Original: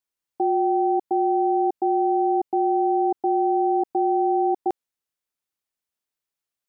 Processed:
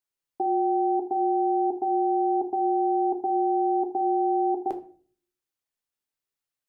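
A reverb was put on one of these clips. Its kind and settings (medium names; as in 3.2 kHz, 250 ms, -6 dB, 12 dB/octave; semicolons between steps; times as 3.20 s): simulated room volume 39 m³, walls mixed, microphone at 0.3 m; trim -3 dB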